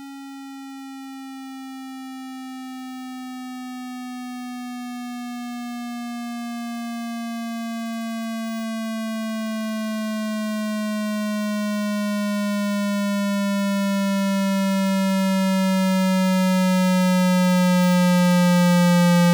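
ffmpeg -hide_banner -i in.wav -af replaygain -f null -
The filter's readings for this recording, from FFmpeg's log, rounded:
track_gain = +2.4 dB
track_peak = 0.126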